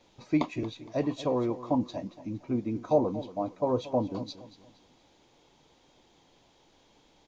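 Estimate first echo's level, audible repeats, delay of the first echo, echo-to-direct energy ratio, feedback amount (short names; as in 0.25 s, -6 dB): -15.5 dB, 3, 0.232 s, -15.0 dB, 37%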